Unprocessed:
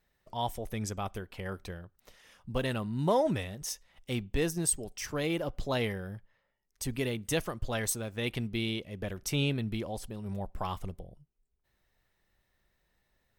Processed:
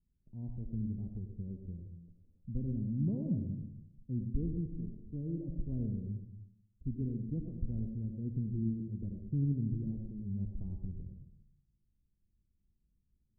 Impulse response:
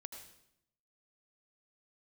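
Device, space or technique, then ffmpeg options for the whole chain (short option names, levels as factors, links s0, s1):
next room: -filter_complex "[0:a]lowpass=f=260:w=0.5412,lowpass=f=260:w=1.3066[s0];[1:a]atrim=start_sample=2205[s1];[s0][s1]afir=irnorm=-1:irlink=0,volume=1.88"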